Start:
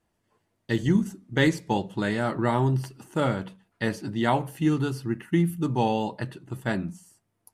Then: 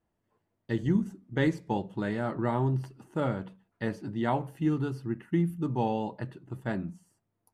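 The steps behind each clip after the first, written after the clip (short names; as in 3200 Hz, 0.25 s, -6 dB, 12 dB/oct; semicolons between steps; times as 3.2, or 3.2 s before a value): high shelf 2400 Hz -11 dB; gain -4 dB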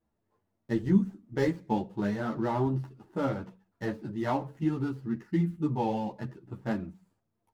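median filter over 15 samples; ensemble effect; gain +3 dB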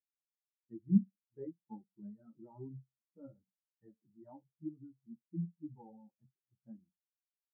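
spectral expander 2.5:1; gain -3.5 dB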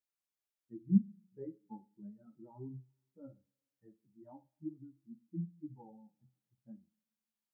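two-slope reverb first 0.38 s, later 1.8 s, from -27 dB, DRR 12.5 dB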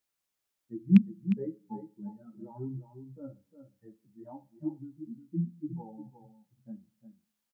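rattling part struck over -25 dBFS, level -29 dBFS; echo 0.356 s -10 dB; gain +8 dB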